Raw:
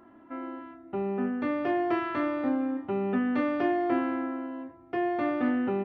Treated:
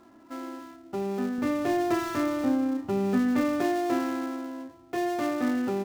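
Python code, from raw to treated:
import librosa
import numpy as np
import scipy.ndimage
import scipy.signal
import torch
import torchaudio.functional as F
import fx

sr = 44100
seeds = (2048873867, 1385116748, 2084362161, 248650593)

y = fx.dead_time(x, sr, dead_ms=0.12)
y = fx.low_shelf(y, sr, hz=160.0, db=10.5, at=(1.38, 3.62))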